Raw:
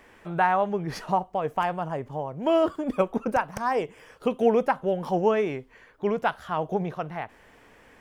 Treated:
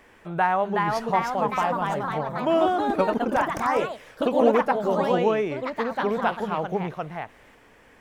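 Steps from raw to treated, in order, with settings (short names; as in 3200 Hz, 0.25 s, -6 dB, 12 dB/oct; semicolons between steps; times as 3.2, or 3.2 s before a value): echoes that change speed 0.414 s, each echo +2 st, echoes 3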